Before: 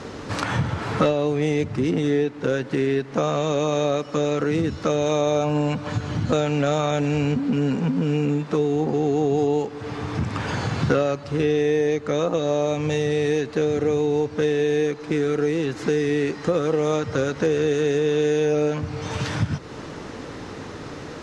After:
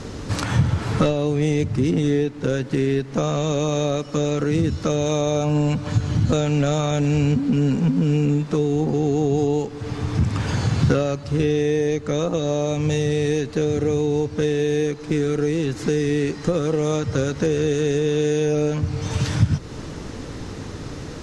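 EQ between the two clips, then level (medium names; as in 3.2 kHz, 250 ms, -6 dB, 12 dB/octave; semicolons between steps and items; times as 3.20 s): bass shelf 62 Hz +11.5 dB; bass shelf 360 Hz +9 dB; treble shelf 3.9 kHz +12 dB; -4.5 dB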